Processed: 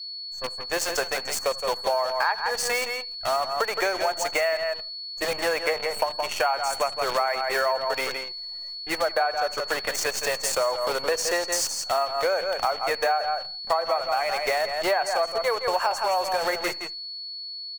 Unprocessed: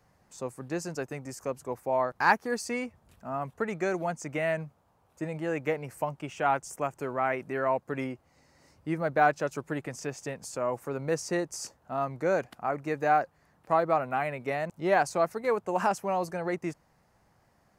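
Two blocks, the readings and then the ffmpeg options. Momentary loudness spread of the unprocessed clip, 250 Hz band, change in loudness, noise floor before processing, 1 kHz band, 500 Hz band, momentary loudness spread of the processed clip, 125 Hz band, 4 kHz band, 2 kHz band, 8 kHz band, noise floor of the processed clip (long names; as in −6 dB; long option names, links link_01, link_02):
12 LU, −7.0 dB, +5.0 dB, −67 dBFS, +4.0 dB, +4.0 dB, 7 LU, −12.5 dB, +20.5 dB, +6.0 dB, +12.0 dB, −37 dBFS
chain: -filter_complex "[0:a]aeval=exprs='if(lt(val(0),0),0.708*val(0),val(0))':channel_layout=same,dynaudnorm=framelen=190:gausssize=7:maxgain=12dB,highpass=frequency=530:width=0.5412,highpass=frequency=530:width=1.3066,asplit=2[link_01][link_02];[link_02]aecho=0:1:76|152|228:0.112|0.0393|0.0137[link_03];[link_01][link_03]amix=inputs=2:normalize=0,adynamicequalizer=threshold=0.0355:dfrequency=1400:dqfactor=1.9:tfrequency=1400:tqfactor=1.9:attack=5:release=100:ratio=0.375:range=1.5:mode=cutabove:tftype=bell,acrusher=bits=6:dc=4:mix=0:aa=0.000001,asplit=2[link_04][link_05];[link_05]aecho=0:1:167:0.355[link_06];[link_04][link_06]amix=inputs=2:normalize=0,acompressor=threshold=-27dB:ratio=8,aeval=exprs='val(0)+0.0112*sin(2*PI*4400*n/s)':channel_layout=same,afftdn=noise_reduction=16:noise_floor=-53,volume=5.5dB"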